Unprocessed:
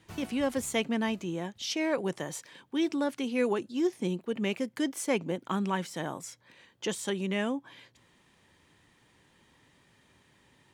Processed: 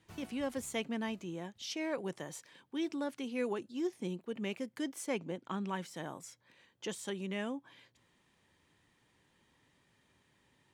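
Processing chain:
0:05.06–0:05.67: low-pass filter 12,000 Hz → 5,800 Hz 12 dB per octave
level −7.5 dB

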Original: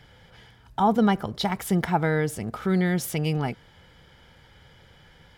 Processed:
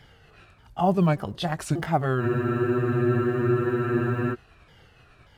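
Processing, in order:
pitch shifter swept by a sawtooth −5 semitones, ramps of 585 ms
floating-point word with a short mantissa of 6 bits
frozen spectrum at 0:02.23, 2.10 s

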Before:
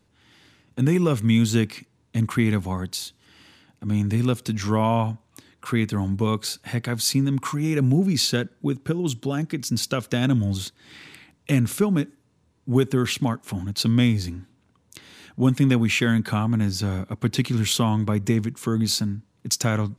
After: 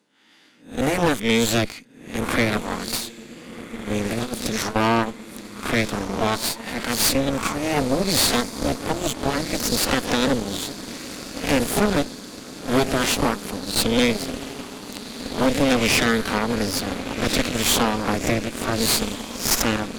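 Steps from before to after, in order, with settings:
peak hold with a rise ahead of every peak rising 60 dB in 0.42 s
high-pass filter 210 Hz 24 dB per octave
notch filter 370 Hz, Q 12
0:04.03–0:04.76: compressor whose output falls as the input rises −27 dBFS, ratio −0.5
on a send: feedback delay with all-pass diffusion 1,448 ms, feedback 72%, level −12 dB
on the sum: harmonic generator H 8 −10 dB, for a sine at −6 dBFS
level −1 dB

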